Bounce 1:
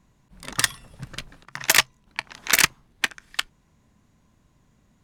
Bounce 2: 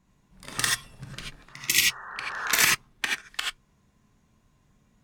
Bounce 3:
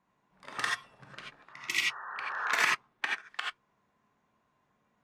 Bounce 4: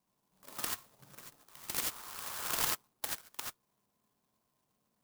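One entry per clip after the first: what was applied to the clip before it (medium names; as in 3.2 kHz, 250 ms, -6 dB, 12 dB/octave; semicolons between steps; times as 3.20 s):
spectral replace 1.52–2.45 s, 370–1900 Hz both; gated-style reverb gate 110 ms rising, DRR -2 dB; trim -6 dB
band-pass filter 990 Hz, Q 0.79
sampling jitter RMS 0.15 ms; trim -5.5 dB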